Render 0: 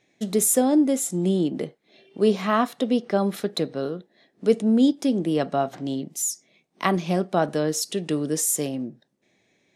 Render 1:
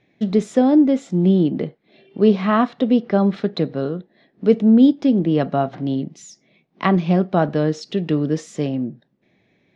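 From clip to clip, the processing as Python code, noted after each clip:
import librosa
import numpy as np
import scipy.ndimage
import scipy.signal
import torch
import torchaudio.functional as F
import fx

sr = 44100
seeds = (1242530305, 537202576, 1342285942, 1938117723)

y = scipy.signal.sosfilt(scipy.signal.butter(4, 5300.0, 'lowpass', fs=sr, output='sos'), x)
y = fx.bass_treble(y, sr, bass_db=7, treble_db=-9)
y = F.gain(torch.from_numpy(y), 3.0).numpy()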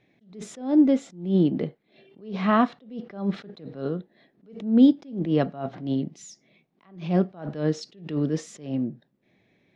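y = fx.attack_slew(x, sr, db_per_s=130.0)
y = F.gain(torch.from_numpy(y), -3.0).numpy()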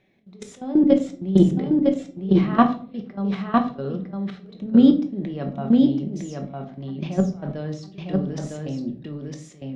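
y = fx.level_steps(x, sr, step_db=18)
y = y + 10.0 ** (-3.0 / 20.0) * np.pad(y, (int(956 * sr / 1000.0), 0))[:len(y)]
y = fx.room_shoebox(y, sr, seeds[0], volume_m3=340.0, walls='furnished', distance_m=1.1)
y = F.gain(torch.from_numpy(y), 6.0).numpy()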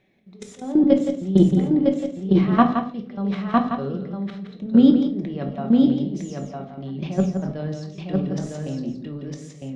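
y = x + 10.0 ** (-8.0 / 20.0) * np.pad(x, (int(169 * sr / 1000.0), 0))[:len(x)]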